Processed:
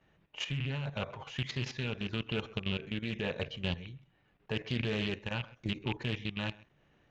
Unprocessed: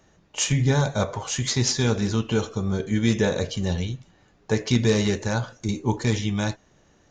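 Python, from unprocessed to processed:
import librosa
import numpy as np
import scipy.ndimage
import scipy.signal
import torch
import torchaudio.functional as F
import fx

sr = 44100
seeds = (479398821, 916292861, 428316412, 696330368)

p1 = fx.rattle_buzz(x, sr, strikes_db=-24.0, level_db=-18.0)
p2 = fx.peak_eq(p1, sr, hz=140.0, db=7.0, octaves=0.25)
p3 = fx.level_steps(p2, sr, step_db=12)
p4 = fx.lowpass_res(p3, sr, hz=2700.0, q=2.0)
p5 = p4 + fx.echo_single(p4, sr, ms=132, db=-23.5, dry=0)
p6 = fx.tremolo_shape(p5, sr, shape='triangle', hz=0.9, depth_pct=40)
p7 = fx.doppler_dist(p6, sr, depth_ms=0.27)
y = p7 * librosa.db_to_amplitude(-7.5)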